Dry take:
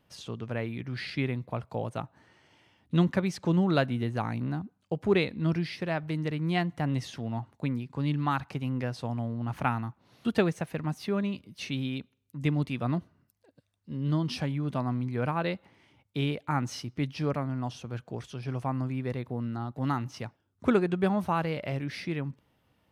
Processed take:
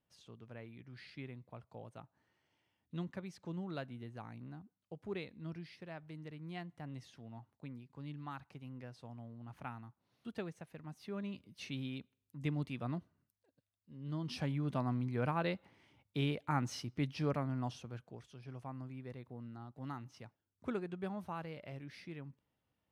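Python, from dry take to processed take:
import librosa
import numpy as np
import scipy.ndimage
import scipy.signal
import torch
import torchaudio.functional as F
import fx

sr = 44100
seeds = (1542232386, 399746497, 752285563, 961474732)

y = fx.gain(x, sr, db=fx.line((10.85, -17.5), (11.41, -9.5), (12.79, -9.5), (13.93, -17.5), (14.48, -5.5), (17.69, -5.5), (18.21, -15.0)))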